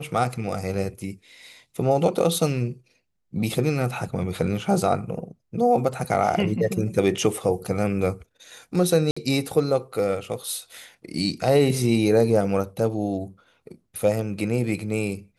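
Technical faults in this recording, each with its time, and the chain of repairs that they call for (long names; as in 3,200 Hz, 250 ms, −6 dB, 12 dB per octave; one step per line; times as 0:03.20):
0:09.11–0:09.16: drop-out 55 ms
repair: repair the gap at 0:09.11, 55 ms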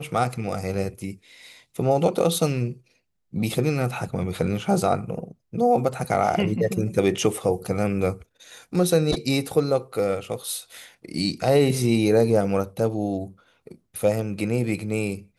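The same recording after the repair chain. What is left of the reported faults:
none of them is left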